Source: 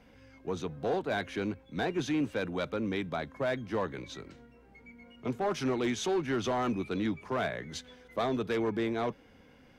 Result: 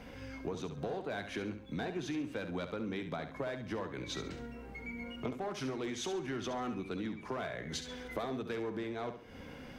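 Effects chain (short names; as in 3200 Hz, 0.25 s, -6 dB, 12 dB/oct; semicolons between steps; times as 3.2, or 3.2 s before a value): compressor 12:1, threshold -45 dBFS, peak gain reduction 18.5 dB; on a send: flutter echo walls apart 11.7 m, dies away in 0.45 s; on the sum: gain +9 dB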